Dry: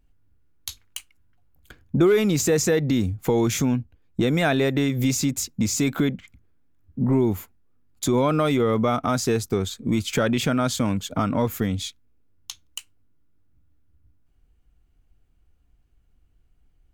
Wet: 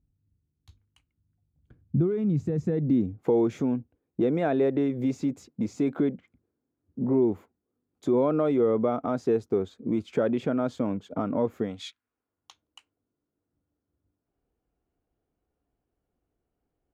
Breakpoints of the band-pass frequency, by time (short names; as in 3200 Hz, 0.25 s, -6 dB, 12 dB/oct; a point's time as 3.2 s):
band-pass, Q 1.1
2.57 s 130 Hz
3.19 s 420 Hz
11.62 s 420 Hz
11.87 s 1800 Hz
12.64 s 520 Hz